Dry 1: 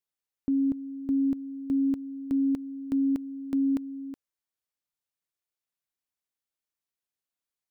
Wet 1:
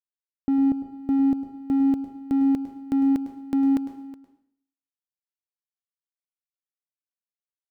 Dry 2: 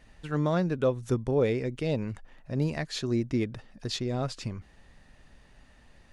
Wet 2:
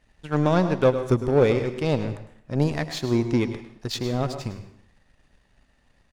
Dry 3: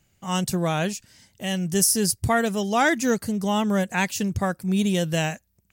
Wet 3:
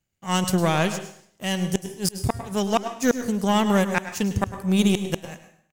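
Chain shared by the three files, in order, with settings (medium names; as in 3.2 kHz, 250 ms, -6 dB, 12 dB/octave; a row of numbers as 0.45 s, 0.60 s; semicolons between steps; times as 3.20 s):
power-law waveshaper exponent 1.4; inverted gate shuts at -13 dBFS, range -32 dB; delay 103 ms -14 dB; plate-style reverb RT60 0.6 s, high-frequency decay 0.9×, pre-delay 100 ms, DRR 11.5 dB; normalise loudness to -24 LUFS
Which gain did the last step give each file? +4.5 dB, +8.5 dB, +7.0 dB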